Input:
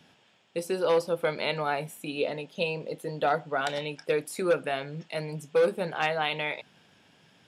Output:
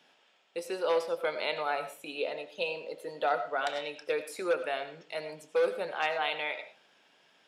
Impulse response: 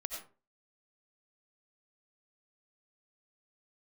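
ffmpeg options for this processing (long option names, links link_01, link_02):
-filter_complex "[0:a]highpass=410,asplit=2[link_01][link_02];[1:a]atrim=start_sample=2205,lowpass=7400[link_03];[link_02][link_03]afir=irnorm=-1:irlink=0,volume=-3.5dB[link_04];[link_01][link_04]amix=inputs=2:normalize=0,volume=-6dB"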